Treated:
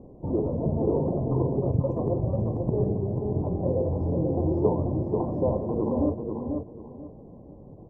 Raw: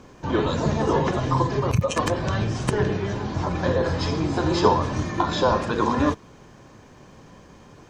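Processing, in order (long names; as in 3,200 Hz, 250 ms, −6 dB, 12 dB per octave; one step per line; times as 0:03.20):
inverse Chebyshev low-pass filter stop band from 1,400 Hz, stop band 40 dB
in parallel at 0 dB: downward compressor, threshold −33 dBFS, peak gain reduction 18 dB
on the sum: repeating echo 489 ms, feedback 25%, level −5 dB
level −5 dB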